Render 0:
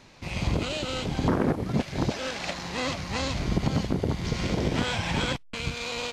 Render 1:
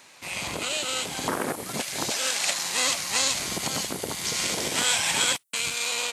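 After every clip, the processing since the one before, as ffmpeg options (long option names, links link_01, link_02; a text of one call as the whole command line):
ffmpeg -i in.wav -filter_complex "[0:a]highpass=frequency=1300:poles=1,highshelf=frequency=6900:width_type=q:width=1.5:gain=8.5,acrossover=split=3800[link_01][link_02];[link_02]dynaudnorm=framelen=500:gausssize=5:maxgain=8dB[link_03];[link_01][link_03]amix=inputs=2:normalize=0,volume=6dB" out.wav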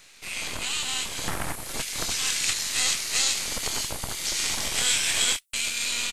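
ffmpeg -i in.wav -filter_complex "[0:a]acrossover=split=1500[link_01][link_02];[link_01]aeval=exprs='abs(val(0))':channel_layout=same[link_03];[link_02]asplit=2[link_04][link_05];[link_05]adelay=24,volume=-7dB[link_06];[link_04][link_06]amix=inputs=2:normalize=0[link_07];[link_03][link_07]amix=inputs=2:normalize=0" out.wav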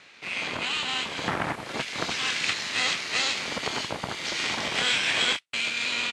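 ffmpeg -i in.wav -af "highpass=140,lowpass=3000,volume=5dB" out.wav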